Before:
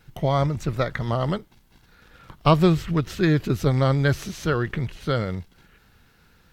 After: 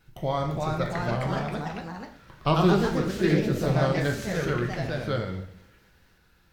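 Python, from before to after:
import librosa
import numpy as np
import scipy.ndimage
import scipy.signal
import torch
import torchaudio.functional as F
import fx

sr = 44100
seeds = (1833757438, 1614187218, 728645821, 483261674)

y = fx.rev_double_slope(x, sr, seeds[0], early_s=0.69, late_s=2.3, knee_db=-25, drr_db=2.5)
y = fx.echo_pitch(y, sr, ms=364, semitones=2, count=3, db_per_echo=-3.0)
y = F.gain(torch.from_numpy(y), -7.0).numpy()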